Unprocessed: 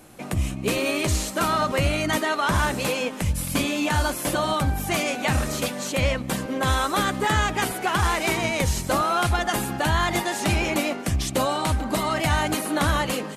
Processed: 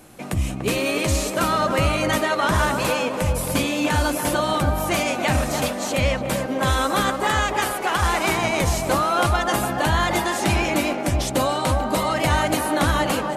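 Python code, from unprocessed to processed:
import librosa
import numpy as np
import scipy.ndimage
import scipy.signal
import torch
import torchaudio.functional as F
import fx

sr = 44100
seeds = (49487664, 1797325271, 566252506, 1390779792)

y = fx.peak_eq(x, sr, hz=170.0, db=-7.5, octaves=2.3, at=(7.1, 8.02))
y = fx.echo_banded(y, sr, ms=292, feedback_pct=68, hz=610.0, wet_db=-3.5)
y = y * 10.0 ** (1.5 / 20.0)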